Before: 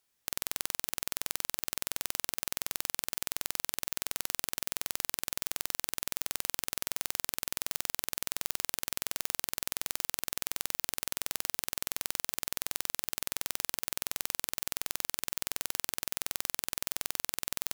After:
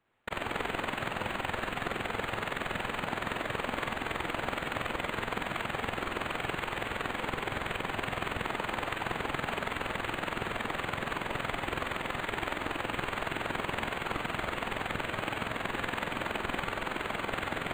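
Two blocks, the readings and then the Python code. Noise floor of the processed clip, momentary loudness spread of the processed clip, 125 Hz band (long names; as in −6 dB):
−40 dBFS, 1 LU, +13.0 dB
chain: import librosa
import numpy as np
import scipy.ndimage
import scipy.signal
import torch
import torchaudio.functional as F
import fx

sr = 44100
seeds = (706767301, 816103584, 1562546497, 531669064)

y = np.diff(x, prepend=0.0)
y = fx.whisperise(y, sr, seeds[0])
y = fx.rev_schroeder(y, sr, rt60_s=0.85, comb_ms=30, drr_db=-0.5)
y = np.interp(np.arange(len(y)), np.arange(len(y))[::8], y[::8])
y = y * librosa.db_to_amplitude(-2.5)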